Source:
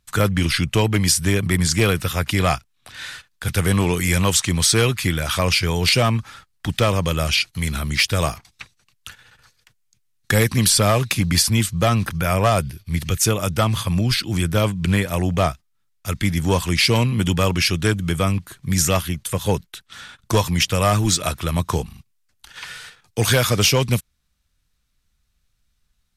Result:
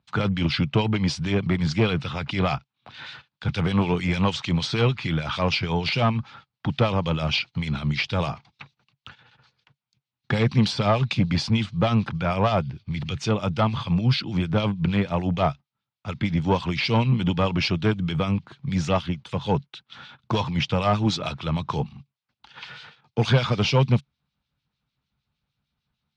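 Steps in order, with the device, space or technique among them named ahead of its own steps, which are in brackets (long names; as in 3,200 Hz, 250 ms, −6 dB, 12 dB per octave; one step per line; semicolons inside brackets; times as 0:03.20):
guitar amplifier with harmonic tremolo (two-band tremolo in antiphase 6.6 Hz, depth 70%, crossover 2,100 Hz; soft clipping −12 dBFS, distortion −19 dB; loudspeaker in its box 100–4,300 Hz, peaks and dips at 140 Hz +8 dB, 220 Hz +4 dB, 860 Hz +6 dB, 1,800 Hz −6 dB)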